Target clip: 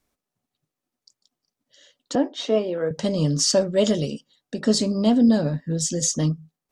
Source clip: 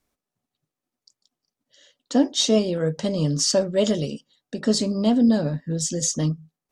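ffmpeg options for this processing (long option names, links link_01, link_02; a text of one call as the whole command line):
ffmpeg -i in.wav -filter_complex "[0:a]asettb=1/sr,asplit=3[link_01][link_02][link_03];[link_01]atrim=end=2.154[link_04];[link_02]atrim=start=2.15:end=2.91,asetpts=PTS-STARTPTS,afade=type=in:duration=0.004:curve=qsin,afade=type=out:start_time=0.756:duration=0.004:curve=qsin,acrossover=split=290 2800:gain=0.2 1 0.1[link_05][link_06][link_07];[link_05][link_06][link_07]amix=inputs=3:normalize=0[link_08];[link_03]atrim=start=2.906[link_09];[link_04][link_08]acrossfade=duration=0.004:curve1=hsin:curve2=qsin[link_10];[link_10][link_09]acrossfade=duration=0.004:curve1=qsin:curve2=hsin,volume=1dB" out.wav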